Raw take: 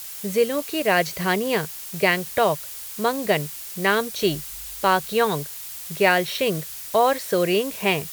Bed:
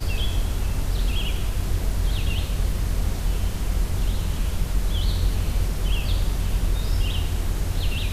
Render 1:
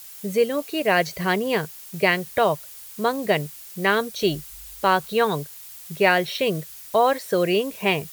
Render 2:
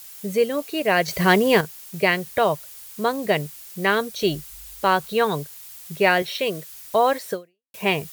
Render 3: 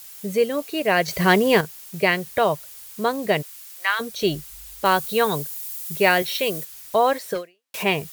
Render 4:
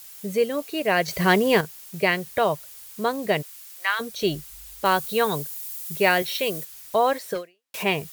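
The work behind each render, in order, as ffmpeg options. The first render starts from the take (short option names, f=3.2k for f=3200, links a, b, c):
-af "afftdn=nr=7:nf=-36"
-filter_complex "[0:a]asettb=1/sr,asplit=3[a][b][c];[a]atrim=end=1.084[d];[b]atrim=start=1.08:end=1.61,asetpts=PTS-STARTPTS,afade=t=in:d=0.004:c=qsin,afade=t=out:st=0.526:d=0.004:c=qsin,acontrast=61[e];[c]atrim=start=1.606[f];[d][e]acrossfade=d=0.004:c1=hsin:c2=qsin[g];[g][f]acrossfade=d=0.004:c1=qsin:c2=hsin,asettb=1/sr,asplit=3[h][i][j];[h]atrim=end=6.224[k];[i]atrim=start=6.22:end=6.73,asetpts=PTS-STARTPTS,afade=t=in:d=0.004:c=qsin,afade=t=out:st=0.506:d=0.004:c=qsin,highpass=f=330:p=1[l];[j]atrim=start=6.726[m];[k][l]acrossfade=d=0.004:c1=hsin:c2=qsin[n];[n][m]acrossfade=d=0.004:c1=qsin:c2=hsin,asplit=2[o][p];[o]atrim=end=7.74,asetpts=PTS-STARTPTS,afade=t=out:st=7.32:d=0.42:c=exp[q];[p]atrim=start=7.74,asetpts=PTS-STARTPTS,afade=t=in:d=0.004:c=hsin[r];[q][r]concat=n=2:v=0:a=1"
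-filter_complex "[0:a]asplit=3[a][b][c];[a]afade=t=out:st=3.41:d=0.02[d];[b]highpass=f=920:w=0.5412,highpass=f=920:w=1.3066,afade=t=in:st=3.41:d=0.02,afade=t=out:st=3.99:d=0.02[e];[c]afade=t=in:st=3.99:d=0.02[f];[d][e][f]amix=inputs=3:normalize=0,asettb=1/sr,asplit=3[g][h][i];[g]atrim=end=4.854[j];[h]atrim=start=4.85:end=6.65,asetpts=PTS-STARTPTS,afade=t=in:d=0.004:c=qsin,afade=t=out:st=1.796:d=0.004:c=qsin,highshelf=f=6.3k:g=9.5[k];[i]atrim=start=6.646[l];[j][k]acrossfade=d=0.004:c1=hsin:c2=qsin[m];[m][l]acrossfade=d=0.004:c1=qsin:c2=hsin,asplit=3[n][o][p];[n]afade=t=out:st=7.34:d=0.02[q];[o]asplit=2[r][s];[s]highpass=f=720:p=1,volume=20dB,asoftclip=type=tanh:threshold=-16.5dB[t];[r][t]amix=inputs=2:normalize=0,lowpass=f=7.1k:p=1,volume=-6dB,afade=t=in:st=7.34:d=0.02,afade=t=out:st=7.82:d=0.02[u];[p]afade=t=in:st=7.82:d=0.02[v];[q][u][v]amix=inputs=3:normalize=0"
-af "volume=-2dB"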